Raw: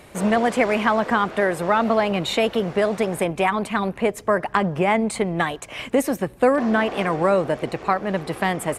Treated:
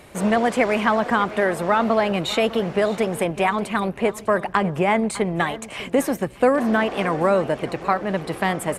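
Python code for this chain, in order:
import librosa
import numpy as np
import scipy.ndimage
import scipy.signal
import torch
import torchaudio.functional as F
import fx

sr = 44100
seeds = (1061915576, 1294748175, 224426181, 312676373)

y = fx.echo_feedback(x, sr, ms=602, feedback_pct=37, wet_db=-17)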